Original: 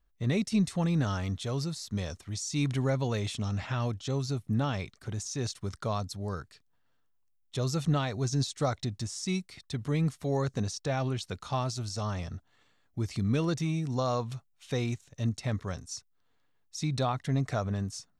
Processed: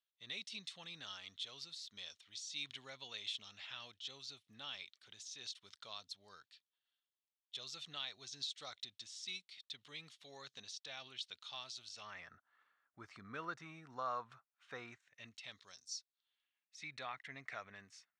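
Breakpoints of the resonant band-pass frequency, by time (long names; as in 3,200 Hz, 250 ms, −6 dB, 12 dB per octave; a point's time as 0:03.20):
resonant band-pass, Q 3
0:11.87 3,400 Hz
0:12.36 1,400 Hz
0:14.86 1,400 Hz
0:15.81 5,100 Hz
0:16.83 2,100 Hz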